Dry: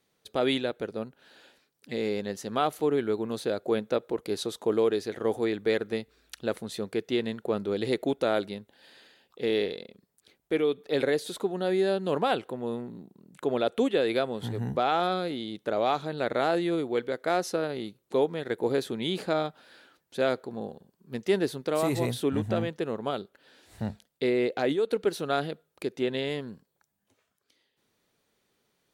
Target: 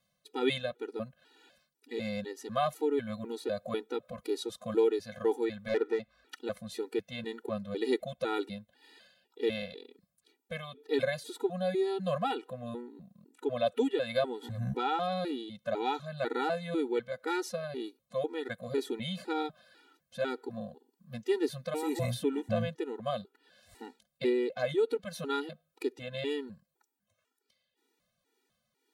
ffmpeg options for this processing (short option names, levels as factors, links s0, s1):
-filter_complex "[0:a]asettb=1/sr,asplit=3[s0][s1][s2];[s0]atrim=end=5.684[s3];[s1]atrim=start=5.68:end=6.36,asetpts=PTS-STARTPTS,afade=t=in:d=0.004:c=qsin,afade=t=out:st=0.676:d=0.004:c=qsin,asplit=2[s4][s5];[s5]highpass=f=720:p=1,volume=7.08,asoftclip=type=tanh:threshold=0.211[s6];[s4][s6]amix=inputs=2:normalize=0,lowpass=f=1100:p=1,volume=0.501[s7];[s2]atrim=start=6.356[s8];[s3][s7]acrossfade=d=0.004:c1=hsin:c2=qsin[s9];[s9][s8]acrossfade=d=0.004:c1=qsin:c2=hsin,tremolo=f=1.9:d=0.37,afftfilt=real='re*gt(sin(2*PI*2*pts/sr)*(1-2*mod(floor(b*sr/1024/250),2)),0)':imag='im*gt(sin(2*PI*2*pts/sr)*(1-2*mod(floor(b*sr/1024/250),2)),0)':win_size=1024:overlap=0.75"